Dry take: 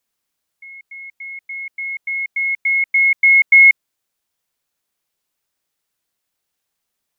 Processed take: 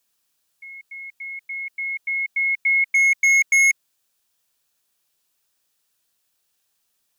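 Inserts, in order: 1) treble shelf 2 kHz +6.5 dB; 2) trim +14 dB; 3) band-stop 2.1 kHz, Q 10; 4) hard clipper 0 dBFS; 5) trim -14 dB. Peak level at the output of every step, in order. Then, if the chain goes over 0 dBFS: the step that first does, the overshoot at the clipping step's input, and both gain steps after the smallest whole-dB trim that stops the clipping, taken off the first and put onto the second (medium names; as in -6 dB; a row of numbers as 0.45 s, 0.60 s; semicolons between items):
-0.5 dBFS, +13.5 dBFS, +8.5 dBFS, 0.0 dBFS, -14.0 dBFS; step 2, 8.5 dB; step 2 +5 dB, step 5 -5 dB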